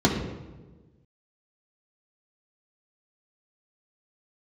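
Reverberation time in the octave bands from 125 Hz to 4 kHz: 1.7 s, 1.6 s, 1.5 s, 1.1 s, 0.90 s, 0.75 s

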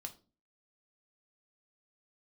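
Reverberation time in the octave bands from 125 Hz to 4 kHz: 0.50 s, 0.50 s, 0.40 s, 0.30 s, 0.25 s, 0.30 s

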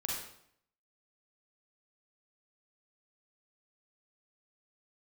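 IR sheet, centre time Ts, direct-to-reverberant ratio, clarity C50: 58 ms, -3.5 dB, 0.0 dB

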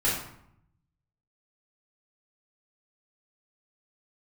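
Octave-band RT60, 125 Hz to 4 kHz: 1.3 s, 0.95 s, 0.70 s, 0.75 s, 0.60 s, 0.45 s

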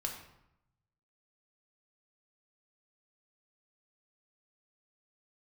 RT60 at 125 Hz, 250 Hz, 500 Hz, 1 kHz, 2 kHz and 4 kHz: 1.4 s, 0.95 s, 0.80 s, 0.85 s, 0.70 s, 0.55 s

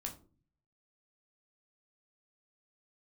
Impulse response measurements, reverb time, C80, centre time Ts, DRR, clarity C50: 0.40 s, 17.0 dB, 14 ms, 1.5 dB, 12.0 dB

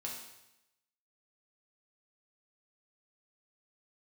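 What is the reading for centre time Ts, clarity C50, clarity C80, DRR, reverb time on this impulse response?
44 ms, 3.5 dB, 6.0 dB, -3.0 dB, 0.90 s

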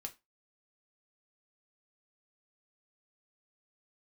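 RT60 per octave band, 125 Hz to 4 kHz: 0.15 s, 0.25 s, 0.20 s, 0.25 s, 0.20 s, 0.20 s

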